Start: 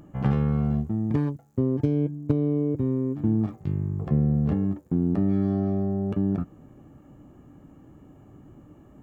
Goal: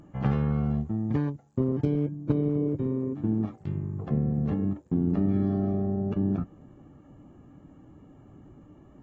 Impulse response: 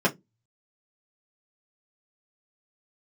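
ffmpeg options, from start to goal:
-filter_complex "[0:a]asettb=1/sr,asplit=3[a][b][c];[a]atrim=end=2.784[d];[b]atrim=start=2.78:end=4.62,asetpts=PTS-STARTPTS,afade=t=in:d=0.004:c=qsin,afade=t=out:st=1.836:d=0.004:c=qsin,lowshelf=f=140:g=-5.5[e];[c]atrim=start=4.616[f];[d][e]acrossfade=d=0.004:c1=hsin:c2=qsin[g];[g][f]acrossfade=d=0.004:c1=qsin:c2=hsin,volume=-2.5dB" -ar 48000 -c:a aac -b:a 24k

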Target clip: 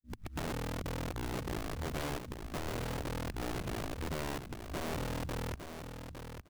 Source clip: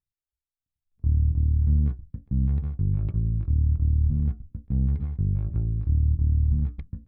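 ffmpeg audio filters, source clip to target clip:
-filter_complex "[0:a]areverse,agate=range=-33dB:threshold=-45dB:ratio=3:detection=peak,lowshelf=f=320:g=-9.5,acrossover=split=93|300[a][b][c];[a]acompressor=threshold=-38dB:ratio=4[d];[b]acompressor=threshold=-39dB:ratio=4[e];[c]acompressor=threshold=-59dB:ratio=4[f];[d][e][f]amix=inputs=3:normalize=0,equalizer=f=100:t=o:w=0.33:g=-5,equalizer=f=200:t=o:w=0.33:g=4,equalizer=f=315:t=o:w=0.33:g=-7,equalizer=f=500:t=o:w=0.33:g=-10,asetrate=48069,aresample=44100,flanger=delay=1.6:depth=5.7:regen=80:speed=0.36:shape=sinusoidal,acrusher=bits=7:mode=log:mix=0:aa=0.000001,aeval=exprs='(mod(89.1*val(0)+1,2)-1)/89.1':c=same,asplit=2[g][h];[h]aecho=0:1:858|1716|2574:0.398|0.0717|0.0129[i];[g][i]amix=inputs=2:normalize=0,volume=6.5dB"

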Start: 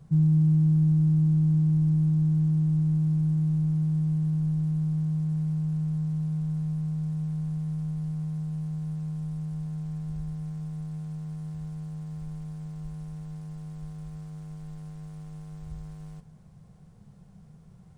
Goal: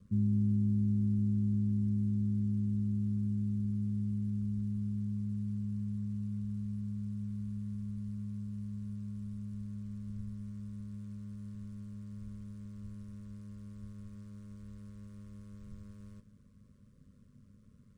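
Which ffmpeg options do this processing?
-af "aeval=exprs='val(0)*sin(2*PI*50*n/s)':c=same,asuperstop=centerf=790:order=12:qfactor=1.9,volume=-5.5dB"

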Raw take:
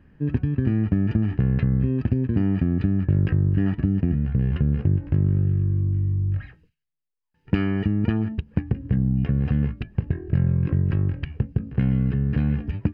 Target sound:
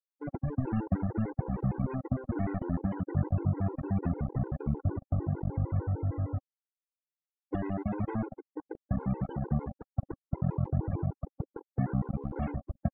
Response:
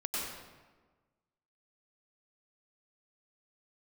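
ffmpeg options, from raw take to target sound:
-filter_complex "[0:a]lowpass=f=720:t=q:w=6.9,bandreject=f=400:w=12,aecho=1:1:319|638|957|1276|1595|1914:0.141|0.0848|0.0509|0.0305|0.0183|0.011,asplit=2[a][b];[1:a]atrim=start_sample=2205[c];[b][c]afir=irnorm=-1:irlink=0,volume=-27dB[d];[a][d]amix=inputs=2:normalize=0,flanger=delay=2.9:depth=9.5:regen=-60:speed=0.4:shape=sinusoidal,aeval=exprs='val(0)*gte(abs(val(0)),0.0531)':c=same,afftfilt=real='re*gte(hypot(re,im),0.0251)':imag='im*gte(hypot(re,im),0.0251)':win_size=1024:overlap=0.75,anlmdn=0.0631,afftfilt=real='re*gt(sin(2*PI*6.6*pts/sr)*(1-2*mod(floor(b*sr/1024/270),2)),0)':imag='im*gt(sin(2*PI*6.6*pts/sr)*(1-2*mod(floor(b*sr/1024/270),2)),0)':win_size=1024:overlap=0.75,volume=-3dB"

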